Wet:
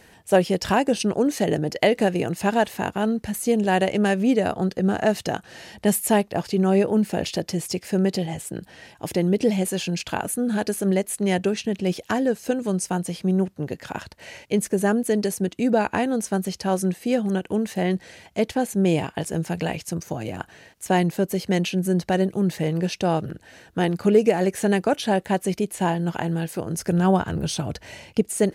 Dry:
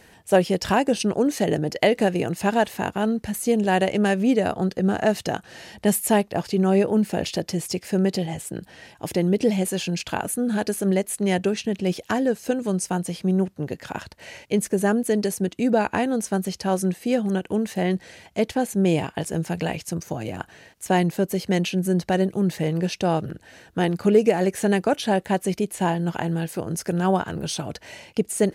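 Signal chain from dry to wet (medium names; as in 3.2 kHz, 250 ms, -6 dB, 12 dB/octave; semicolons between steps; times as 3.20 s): 26.76–28.21 s: bass shelf 130 Hz +11 dB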